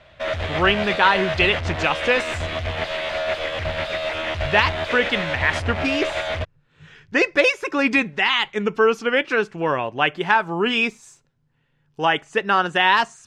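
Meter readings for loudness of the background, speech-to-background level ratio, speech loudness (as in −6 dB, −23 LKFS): −25.5 LKFS, 5.5 dB, −20.0 LKFS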